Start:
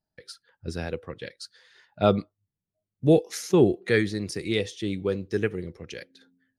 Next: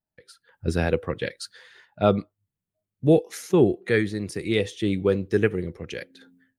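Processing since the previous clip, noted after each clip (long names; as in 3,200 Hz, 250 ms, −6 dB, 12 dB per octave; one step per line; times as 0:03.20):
parametric band 5,200 Hz −7 dB 0.93 octaves
automatic gain control gain up to 16 dB
level −5.5 dB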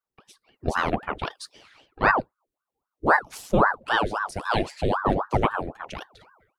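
parametric band 210 Hz +7.5 dB 0.47 octaves
ring modulator whose carrier an LFO sweeps 760 Hz, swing 80%, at 3.8 Hz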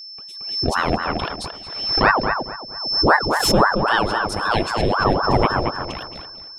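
steady tone 5,300 Hz −38 dBFS
feedback echo with a low-pass in the loop 224 ms, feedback 31%, low-pass 1,900 Hz, level −5 dB
background raised ahead of every attack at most 56 dB per second
level +3.5 dB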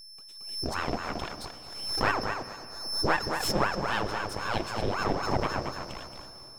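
gain on one half-wave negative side −12 dB
on a send at −14 dB: convolution reverb RT60 3.8 s, pre-delay 13 ms
on the sum: level −8 dB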